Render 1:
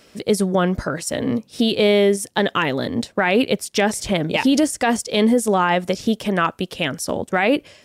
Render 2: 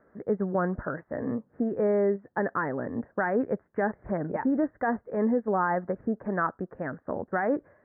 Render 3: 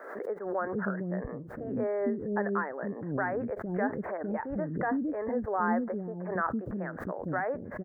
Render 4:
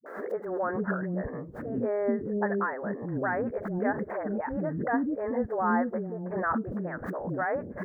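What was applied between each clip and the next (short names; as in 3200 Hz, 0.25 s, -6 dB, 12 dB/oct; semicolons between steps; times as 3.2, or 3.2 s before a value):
steep low-pass 1800 Hz 72 dB/oct; low shelf 320 Hz -3 dB; gain -7.5 dB
bands offset in time highs, lows 0.46 s, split 380 Hz; backwards sustainer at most 55 dB/s; gain -3 dB
dispersion highs, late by 62 ms, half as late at 360 Hz; gain +2 dB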